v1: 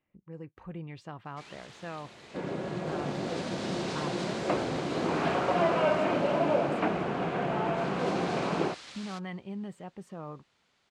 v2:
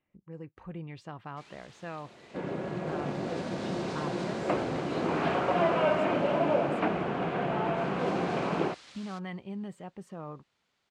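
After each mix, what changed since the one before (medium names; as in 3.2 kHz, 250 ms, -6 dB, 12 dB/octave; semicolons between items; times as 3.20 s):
first sound -5.5 dB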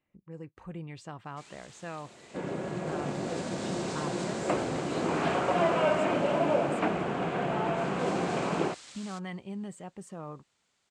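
master: add peaking EQ 7.9 kHz +12.5 dB 0.79 oct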